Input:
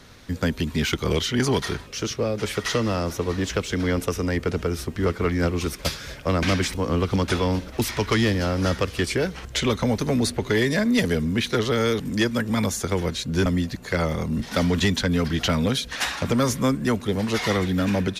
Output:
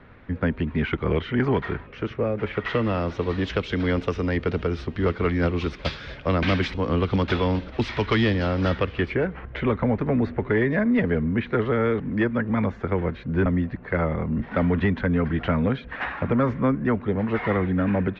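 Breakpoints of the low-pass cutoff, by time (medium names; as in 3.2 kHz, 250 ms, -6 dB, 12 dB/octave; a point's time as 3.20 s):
low-pass 24 dB/octave
2.42 s 2.3 kHz
3.22 s 3.8 kHz
8.66 s 3.8 kHz
9.26 s 2.1 kHz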